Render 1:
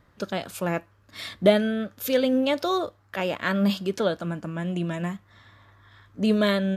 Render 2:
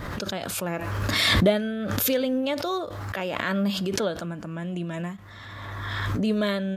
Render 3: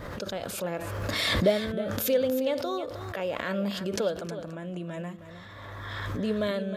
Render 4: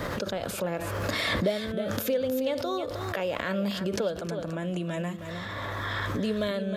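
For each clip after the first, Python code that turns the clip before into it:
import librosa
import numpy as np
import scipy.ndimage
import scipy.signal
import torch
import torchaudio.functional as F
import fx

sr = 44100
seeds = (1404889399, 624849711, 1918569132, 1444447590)

y1 = fx.pre_swell(x, sr, db_per_s=23.0)
y1 = y1 * 10.0 ** (-3.5 / 20.0)
y2 = fx.peak_eq(y1, sr, hz=520.0, db=7.5, octaves=0.62)
y2 = y2 + 10.0 ** (-11.0 / 20.0) * np.pad(y2, (int(314 * sr / 1000.0), 0))[:len(y2)]
y2 = y2 * 10.0 ** (-6.0 / 20.0)
y3 = fx.band_squash(y2, sr, depth_pct=70)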